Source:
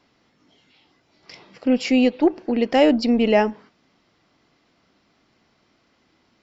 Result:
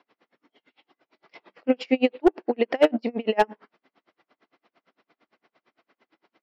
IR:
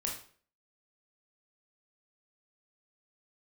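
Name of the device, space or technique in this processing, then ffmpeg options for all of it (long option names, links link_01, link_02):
helicopter radio: -af "highpass=350,lowpass=2700,aeval=exprs='val(0)*pow(10,-35*(0.5-0.5*cos(2*PI*8.8*n/s))/20)':channel_layout=same,asoftclip=type=hard:threshold=-14dB,volume=5.5dB"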